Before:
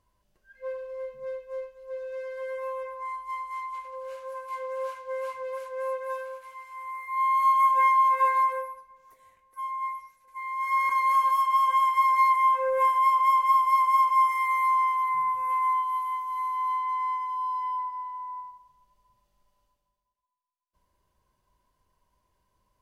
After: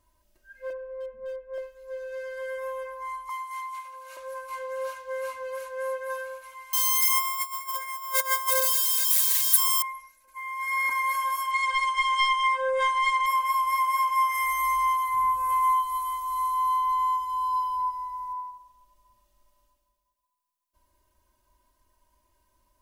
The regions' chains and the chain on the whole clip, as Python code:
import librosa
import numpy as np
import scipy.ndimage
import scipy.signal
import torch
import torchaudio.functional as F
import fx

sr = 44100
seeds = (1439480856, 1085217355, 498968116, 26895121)

y = fx.chain(x, sr, fx.lowpass(hz=1300.0, slope=12),
    fx.clip_hard(threshold_db=-31.0), at=(0.7, 1.58))
y = fx.chain(y, sr, fx.steep_highpass(hz=630.0, slope=48),
    fx.high_shelf(hz=8600.0, db=4.5), at=(3.29, 4.17))
y = fx.chain(y, sr, fx.crossing_spikes(level_db=-24.0),
    fx.over_compress(threshold_db=-26.0, ratio=-0.5), at=(6.73, 9.82))
y = fx.chain(y, sr, fx.self_delay(depth_ms=0.13),
    fx.brickwall_lowpass(high_hz=9800.0), at=(11.51, 13.26))
y = fx.chain(y, sr, fx.bass_treble(bass_db=11, treble_db=6),
    fx.echo_single(ms=117, db=-11.5), at=(14.34, 18.33))
y = fx.high_shelf(y, sr, hz=6500.0, db=8.5)
y = y + 0.87 * np.pad(y, (int(3.2 * sr / 1000.0), 0))[:len(y)]